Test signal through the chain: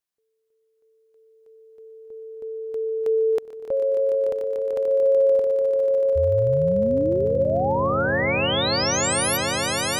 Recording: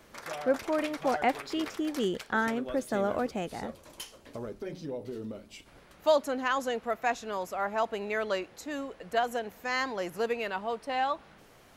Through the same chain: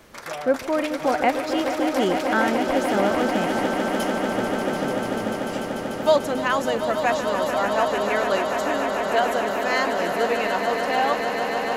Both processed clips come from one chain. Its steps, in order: echo with a slow build-up 147 ms, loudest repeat 8, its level -10 dB; trim +6 dB

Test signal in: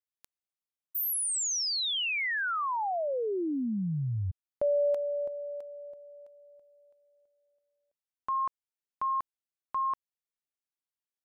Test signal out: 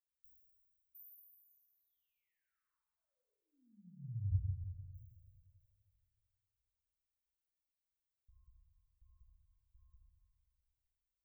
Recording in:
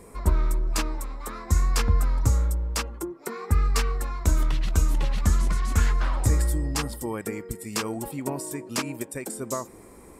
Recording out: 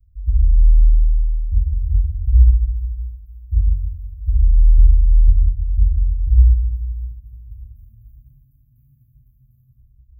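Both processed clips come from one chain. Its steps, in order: inverse Chebyshev band-stop 340–9300 Hz, stop band 70 dB; peaking EQ 8.8 kHz -5.5 dB 0.86 oct; plate-style reverb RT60 2 s, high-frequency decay 0.95×, DRR -7.5 dB

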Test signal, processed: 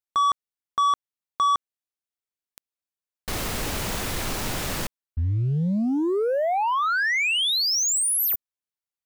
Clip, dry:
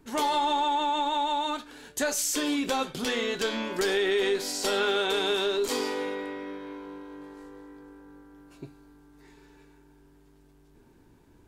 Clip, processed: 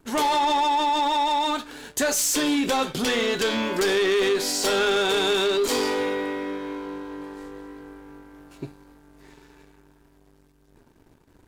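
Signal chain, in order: waveshaping leveller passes 2

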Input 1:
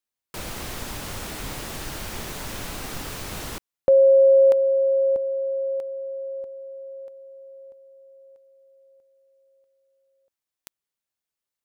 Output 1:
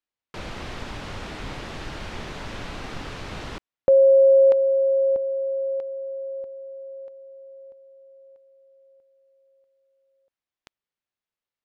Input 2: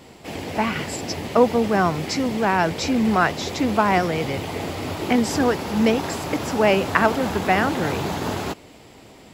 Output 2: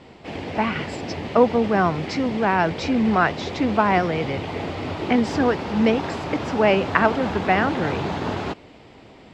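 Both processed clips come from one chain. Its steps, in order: low-pass 3.8 kHz 12 dB/octave

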